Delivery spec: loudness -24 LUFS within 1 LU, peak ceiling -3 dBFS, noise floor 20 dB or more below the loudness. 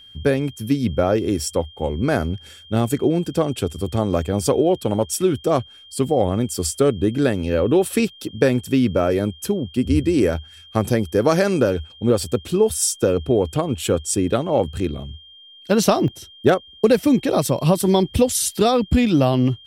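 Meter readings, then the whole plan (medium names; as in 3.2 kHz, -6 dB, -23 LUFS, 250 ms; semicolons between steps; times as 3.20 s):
dropouts 1; longest dropout 1.2 ms; steady tone 3.2 kHz; tone level -43 dBFS; loudness -20.0 LUFS; peak level -3.0 dBFS; loudness target -24.0 LUFS
-> interpolate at 16.08 s, 1.2 ms; band-stop 3.2 kHz, Q 30; trim -4 dB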